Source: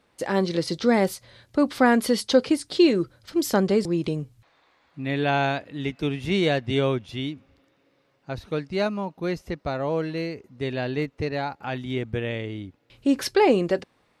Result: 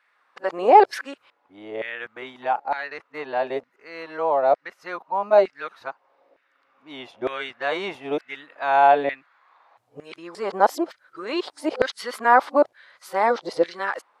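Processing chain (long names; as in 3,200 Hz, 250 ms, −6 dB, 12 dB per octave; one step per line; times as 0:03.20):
played backwards from end to start
tilt shelving filter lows +9.5 dB, about 1,500 Hz
auto-filter high-pass saw down 1.1 Hz 630–1,800 Hz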